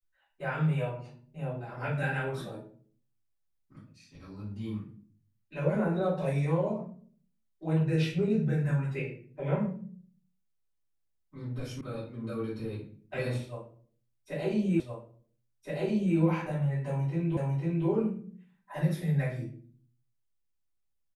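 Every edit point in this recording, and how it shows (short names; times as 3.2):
11.81 sound cut off
14.8 repeat of the last 1.37 s
17.37 repeat of the last 0.5 s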